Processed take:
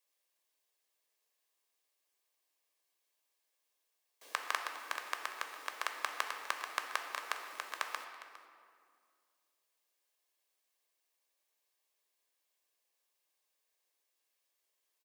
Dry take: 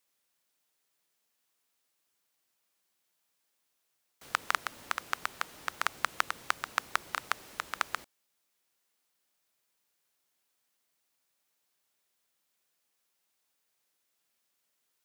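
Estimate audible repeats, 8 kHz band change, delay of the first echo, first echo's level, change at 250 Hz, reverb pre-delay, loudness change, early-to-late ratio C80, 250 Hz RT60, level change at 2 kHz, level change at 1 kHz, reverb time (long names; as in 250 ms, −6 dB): 1, −4.0 dB, 407 ms, −17.0 dB, −9.0 dB, 3 ms, −4.5 dB, 7.0 dB, 2.8 s, −4.5 dB, −5.0 dB, 2.1 s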